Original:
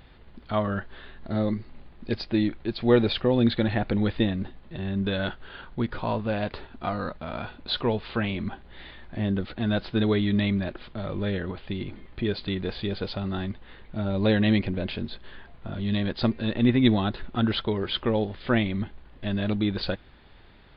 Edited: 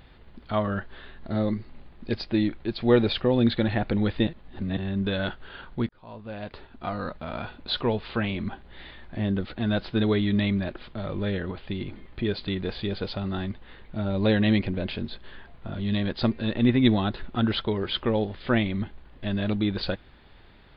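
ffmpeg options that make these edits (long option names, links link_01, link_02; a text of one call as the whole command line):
ffmpeg -i in.wav -filter_complex "[0:a]asplit=4[link_01][link_02][link_03][link_04];[link_01]atrim=end=4.272[link_05];[link_02]atrim=start=4.268:end=4.772,asetpts=PTS-STARTPTS,areverse[link_06];[link_03]atrim=start=4.768:end=5.89,asetpts=PTS-STARTPTS,afade=type=out:start_time=1.118:duration=0.004:curve=hsin[link_07];[link_04]atrim=start=5.89,asetpts=PTS-STARTPTS,afade=type=in:duration=1.29[link_08];[link_05][link_06]acrossfade=duration=0.004:curve1=hsin:curve2=hsin[link_09];[link_07][link_08]concat=n=2:v=0:a=1[link_10];[link_09][link_10]acrossfade=duration=0.004:curve1=hsin:curve2=hsin" out.wav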